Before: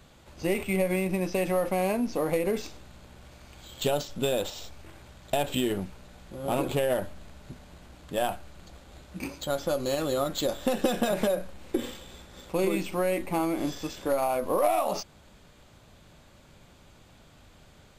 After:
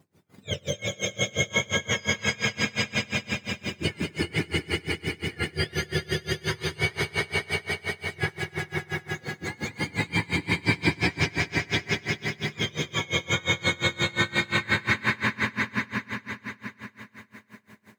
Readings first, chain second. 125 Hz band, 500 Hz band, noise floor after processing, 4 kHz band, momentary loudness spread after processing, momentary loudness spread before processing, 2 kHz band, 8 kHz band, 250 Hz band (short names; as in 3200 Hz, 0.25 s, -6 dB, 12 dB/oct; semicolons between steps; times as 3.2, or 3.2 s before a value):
+7.5 dB, -6.0 dB, -58 dBFS, +9.5 dB, 9 LU, 17 LU, +14.0 dB, +4.5 dB, -0.5 dB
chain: spectrum mirrored in octaves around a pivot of 1100 Hz; high shelf 8200 Hz -10.5 dB; notch 5500 Hz, Q 16; in parallel at -0.5 dB: compressor, threshold -44 dBFS, peak gain reduction 21.5 dB; on the sum: bit-crush 10-bit; gate -45 dBFS, range -11 dB; vibrato 0.4 Hz 6 cents; on a send: swelling echo 98 ms, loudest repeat 5, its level -3 dB; on the sum: dB-linear tremolo 5.7 Hz, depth 27 dB; gain +2.5 dB